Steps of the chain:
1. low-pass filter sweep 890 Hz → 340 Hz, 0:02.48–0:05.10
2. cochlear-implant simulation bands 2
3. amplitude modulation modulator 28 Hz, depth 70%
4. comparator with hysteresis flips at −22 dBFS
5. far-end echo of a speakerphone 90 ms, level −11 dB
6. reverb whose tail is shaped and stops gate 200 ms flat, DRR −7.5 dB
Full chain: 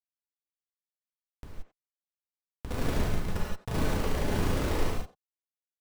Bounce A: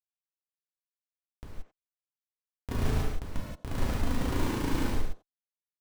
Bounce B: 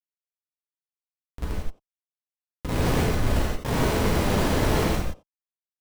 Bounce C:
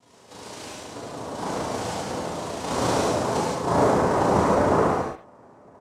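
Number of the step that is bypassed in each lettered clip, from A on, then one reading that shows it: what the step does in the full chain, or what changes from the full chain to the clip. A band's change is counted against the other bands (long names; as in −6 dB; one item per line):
2, change in integrated loudness −1.0 LU
3, change in momentary loudness spread −5 LU
4, 1 kHz band +8.0 dB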